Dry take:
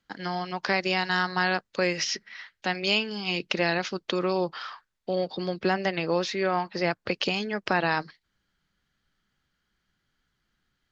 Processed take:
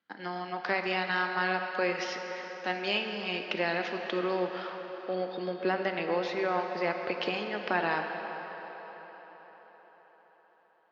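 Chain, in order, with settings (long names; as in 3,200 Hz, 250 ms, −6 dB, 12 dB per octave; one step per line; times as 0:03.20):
band-pass filter 240–3,200 Hz
on a send: delay with a band-pass on its return 130 ms, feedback 85%, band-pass 870 Hz, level −12.5 dB
on the sum: dense smooth reverb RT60 3.6 s, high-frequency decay 1×, DRR 5.5 dB
level −4 dB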